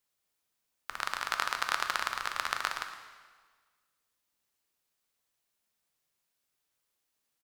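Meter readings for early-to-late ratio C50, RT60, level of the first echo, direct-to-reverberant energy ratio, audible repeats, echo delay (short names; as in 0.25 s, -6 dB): 7.5 dB, 1.5 s, -14.5 dB, 5.5 dB, 1, 0.114 s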